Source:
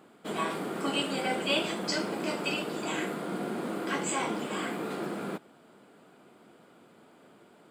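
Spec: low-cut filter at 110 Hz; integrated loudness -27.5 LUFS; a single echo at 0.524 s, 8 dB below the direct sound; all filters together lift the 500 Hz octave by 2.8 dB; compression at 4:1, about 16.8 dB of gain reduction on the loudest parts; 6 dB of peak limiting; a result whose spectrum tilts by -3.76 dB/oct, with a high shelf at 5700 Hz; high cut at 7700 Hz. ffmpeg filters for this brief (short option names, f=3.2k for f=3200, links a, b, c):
-af "highpass=110,lowpass=7.7k,equalizer=f=500:t=o:g=3.5,highshelf=f=5.7k:g=7,acompressor=threshold=-42dB:ratio=4,alimiter=level_in=11dB:limit=-24dB:level=0:latency=1,volume=-11dB,aecho=1:1:524:0.398,volume=16.5dB"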